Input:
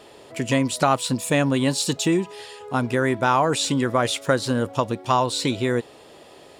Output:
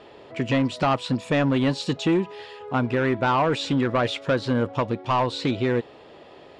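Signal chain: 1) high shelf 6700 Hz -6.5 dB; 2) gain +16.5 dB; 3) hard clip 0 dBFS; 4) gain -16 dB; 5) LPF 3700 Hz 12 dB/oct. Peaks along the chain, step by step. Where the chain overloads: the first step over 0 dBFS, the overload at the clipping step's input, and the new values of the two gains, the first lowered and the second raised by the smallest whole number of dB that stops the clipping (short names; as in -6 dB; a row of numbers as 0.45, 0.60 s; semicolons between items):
-6.5, +10.0, 0.0, -16.0, -15.5 dBFS; step 2, 10.0 dB; step 2 +6.5 dB, step 4 -6 dB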